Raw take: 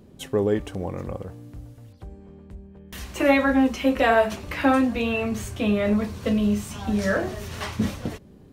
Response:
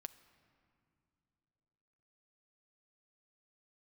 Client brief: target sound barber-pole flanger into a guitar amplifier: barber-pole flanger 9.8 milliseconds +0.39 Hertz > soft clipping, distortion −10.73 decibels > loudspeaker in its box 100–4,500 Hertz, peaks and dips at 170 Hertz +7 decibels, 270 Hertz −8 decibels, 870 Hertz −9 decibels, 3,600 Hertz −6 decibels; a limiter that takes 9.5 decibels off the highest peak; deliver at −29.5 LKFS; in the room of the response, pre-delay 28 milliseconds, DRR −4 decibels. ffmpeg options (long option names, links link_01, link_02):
-filter_complex "[0:a]alimiter=limit=-16dB:level=0:latency=1,asplit=2[link_01][link_02];[1:a]atrim=start_sample=2205,adelay=28[link_03];[link_02][link_03]afir=irnorm=-1:irlink=0,volume=9dB[link_04];[link_01][link_04]amix=inputs=2:normalize=0,asplit=2[link_05][link_06];[link_06]adelay=9.8,afreqshift=0.39[link_07];[link_05][link_07]amix=inputs=2:normalize=1,asoftclip=threshold=-21dB,highpass=100,equalizer=frequency=170:width_type=q:width=4:gain=7,equalizer=frequency=270:width_type=q:width=4:gain=-8,equalizer=frequency=870:width_type=q:width=4:gain=-9,equalizer=frequency=3600:width_type=q:width=4:gain=-6,lowpass=frequency=4500:width=0.5412,lowpass=frequency=4500:width=1.3066,volume=-0.5dB"